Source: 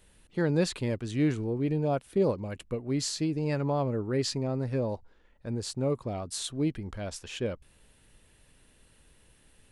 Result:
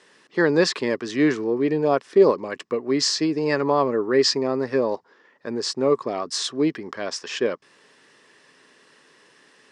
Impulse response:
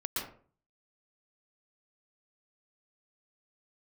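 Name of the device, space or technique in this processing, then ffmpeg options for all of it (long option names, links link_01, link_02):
television speaker: -af "highpass=frequency=190:width=0.5412,highpass=frequency=190:width=1.3066,equalizer=frequency=200:width_type=q:width=4:gain=-6,equalizer=frequency=410:width_type=q:width=4:gain=6,equalizer=frequency=1100:width_type=q:width=4:gain=10,equalizer=frequency=1800:width_type=q:width=4:gain=9,equalizer=frequency=5200:width_type=q:width=4:gain=9,lowpass=frequency=7400:width=0.5412,lowpass=frequency=7400:width=1.3066,volume=7dB"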